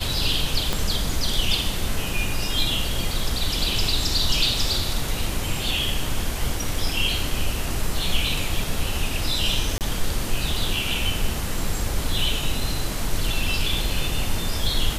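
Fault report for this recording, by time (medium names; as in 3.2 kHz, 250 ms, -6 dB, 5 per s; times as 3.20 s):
0.73 s: pop -8 dBFS
9.78–9.81 s: dropout 28 ms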